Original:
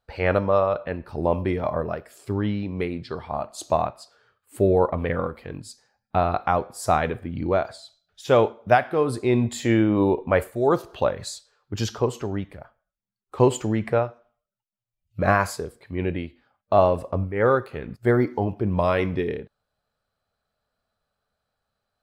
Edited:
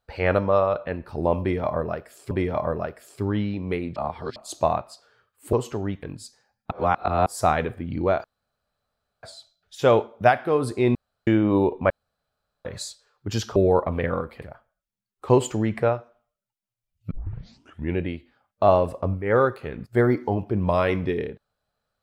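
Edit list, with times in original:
1.4–2.31 loop, 2 plays
3.05–3.45 reverse
4.62–5.48 swap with 12.02–12.52
6.16–6.71 reverse
7.69 insert room tone 0.99 s
9.41–9.73 room tone
10.36–11.11 room tone
15.21 tape start 0.84 s

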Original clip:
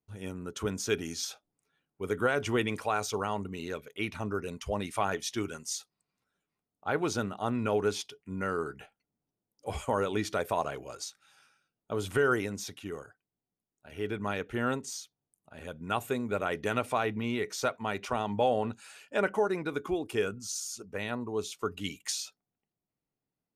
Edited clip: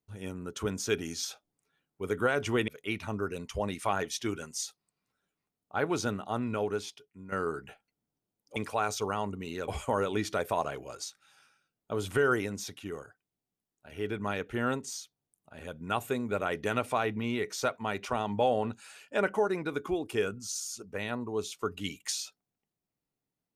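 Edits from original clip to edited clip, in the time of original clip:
2.68–3.8 move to 9.68
7.28–8.44 fade out, to -12 dB

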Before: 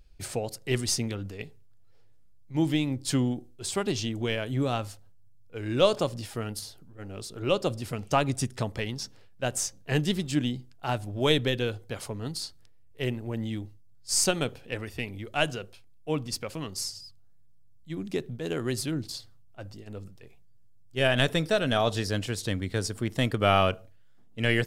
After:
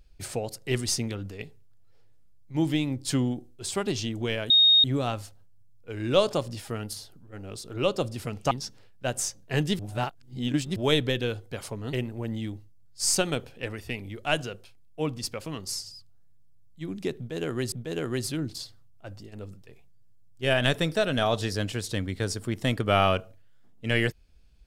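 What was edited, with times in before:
4.5 add tone 3720 Hz -14.5 dBFS 0.34 s
8.17–8.89 cut
10.17–11.14 reverse
12.31–13.02 cut
18.26–18.81 loop, 2 plays

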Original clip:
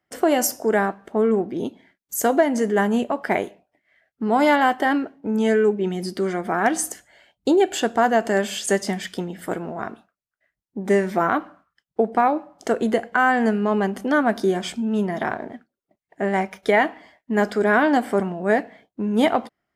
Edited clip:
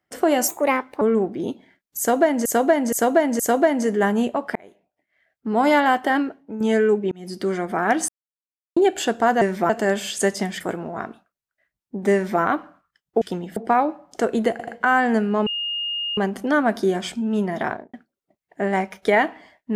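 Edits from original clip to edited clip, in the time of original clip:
0.48–1.18 speed 131%
2.15–2.62 loop, 4 plays
3.31–4.36 fade in
4.93–5.36 fade out linear, to -9 dB
5.87–6.18 fade in
6.84–7.52 mute
9.08–9.43 move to 12.04
10.96–11.24 copy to 8.17
12.99 stutter 0.08 s, 3 plays
13.78 add tone 2840 Hz -23.5 dBFS 0.71 s
15.29–15.54 studio fade out

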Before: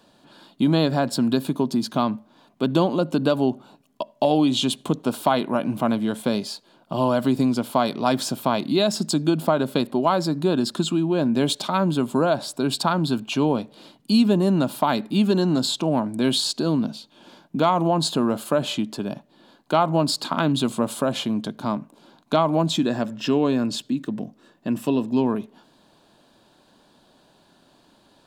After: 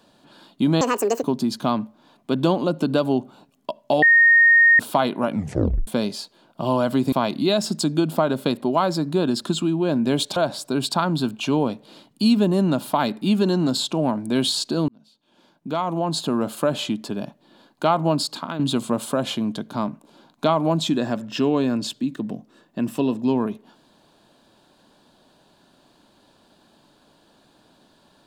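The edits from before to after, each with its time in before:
0.81–1.55 speed 175%
4.34–5.11 bleep 1850 Hz -10 dBFS
5.62 tape stop 0.57 s
7.44–8.42 cut
11.66–12.25 cut
16.77–18.44 fade in
20.04–20.48 fade out, to -11 dB

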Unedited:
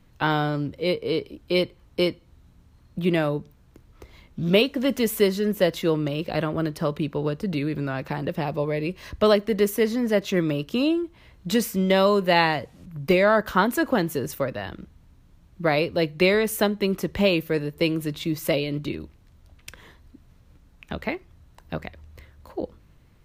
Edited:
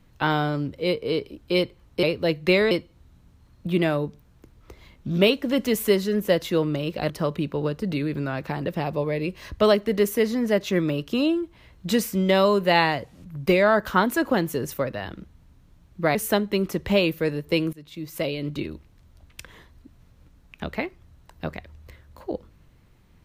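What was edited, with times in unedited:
6.42–6.71 cut
15.76–16.44 move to 2.03
18.02–18.88 fade in, from -21.5 dB

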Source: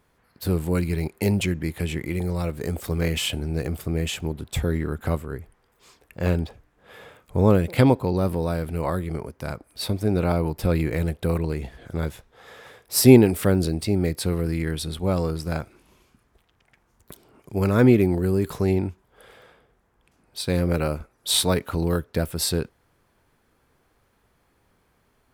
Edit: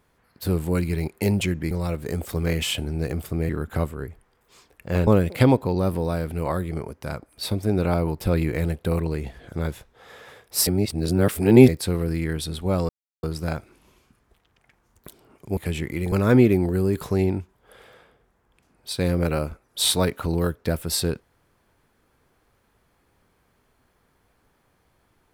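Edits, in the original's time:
1.71–2.26 move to 17.61
4.04–4.8 cut
6.38–7.45 cut
13.05–14.06 reverse
15.27 insert silence 0.34 s

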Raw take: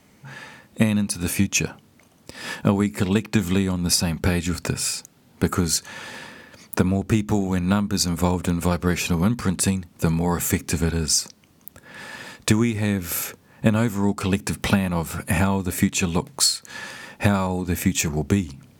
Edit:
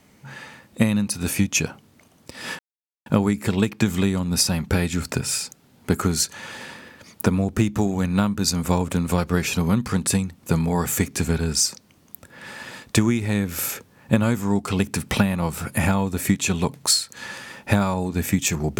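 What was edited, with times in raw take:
2.59 insert silence 0.47 s

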